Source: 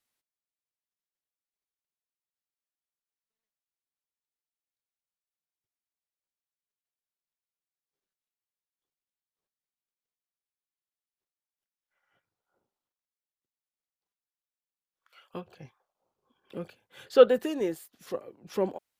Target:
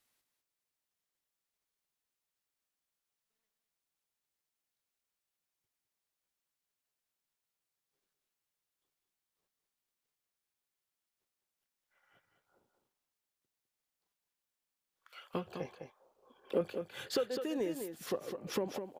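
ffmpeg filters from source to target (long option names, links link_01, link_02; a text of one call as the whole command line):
ffmpeg -i in.wav -filter_complex "[0:a]acompressor=threshold=-36dB:ratio=12,asettb=1/sr,asplit=3[link_01][link_02][link_03];[link_01]atrim=end=15.554[link_04];[link_02]atrim=start=15.55:end=16.61,asetpts=PTS-STARTPTS,afade=type=in:duration=0.004:curve=qsin,afade=type=out:start_time=1.056:duration=0.004:curve=qsin,equalizer=frequency=125:width_type=o:width=1:gain=-9,equalizer=frequency=500:width_type=o:width=1:gain=9,equalizer=frequency=1000:width_type=o:width=1:gain=3[link_05];[link_03]atrim=start=16.606[link_06];[link_04][link_05]acrossfade=duration=0.004:curve1=hsin:curve2=qsin[link_07];[link_07][link_06]acrossfade=duration=0.004:curve1=qsin:curve2=hsin,aecho=1:1:205:0.422,volume=4.5dB" out.wav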